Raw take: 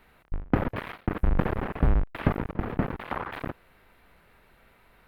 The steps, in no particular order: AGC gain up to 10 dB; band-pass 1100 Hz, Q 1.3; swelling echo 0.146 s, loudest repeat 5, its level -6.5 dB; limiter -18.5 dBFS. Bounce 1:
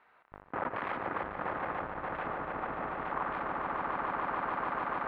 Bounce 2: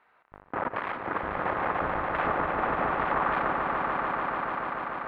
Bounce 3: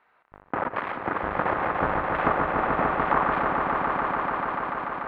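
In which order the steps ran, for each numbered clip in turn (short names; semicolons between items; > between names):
AGC > swelling echo > limiter > band-pass; band-pass > AGC > limiter > swelling echo; band-pass > limiter > AGC > swelling echo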